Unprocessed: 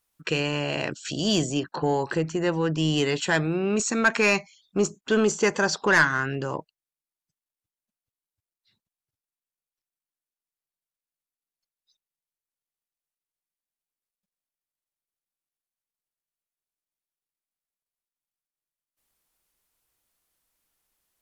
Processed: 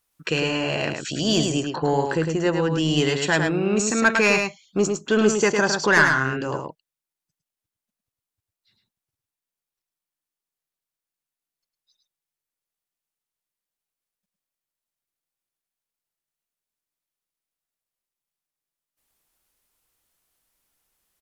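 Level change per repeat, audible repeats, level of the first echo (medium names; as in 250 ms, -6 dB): no regular repeats, 1, -5.0 dB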